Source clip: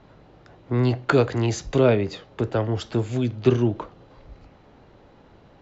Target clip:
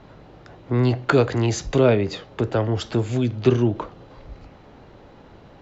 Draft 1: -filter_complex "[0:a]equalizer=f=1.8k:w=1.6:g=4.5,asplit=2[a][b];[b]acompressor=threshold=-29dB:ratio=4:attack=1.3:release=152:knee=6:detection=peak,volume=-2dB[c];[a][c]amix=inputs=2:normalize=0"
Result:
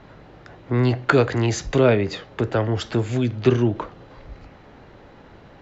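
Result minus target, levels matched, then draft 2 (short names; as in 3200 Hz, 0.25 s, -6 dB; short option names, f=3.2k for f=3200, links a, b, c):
2000 Hz band +3.0 dB
-filter_complex "[0:a]asplit=2[a][b];[b]acompressor=threshold=-29dB:ratio=4:attack=1.3:release=152:knee=6:detection=peak,volume=-2dB[c];[a][c]amix=inputs=2:normalize=0"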